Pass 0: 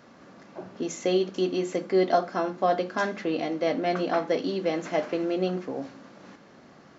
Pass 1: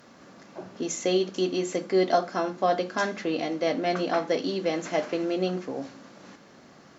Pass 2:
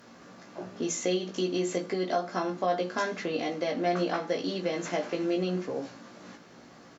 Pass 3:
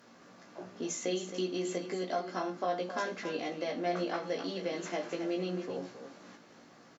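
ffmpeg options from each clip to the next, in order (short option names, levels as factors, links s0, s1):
-af "aemphasis=mode=production:type=cd"
-filter_complex "[0:a]acompressor=threshold=0.0562:ratio=4,asplit=2[s0][s1];[s1]adelay=17,volume=0.708[s2];[s0][s2]amix=inputs=2:normalize=0,volume=0.841"
-af "lowshelf=f=97:g=-9,aecho=1:1:268:0.316,volume=0.562"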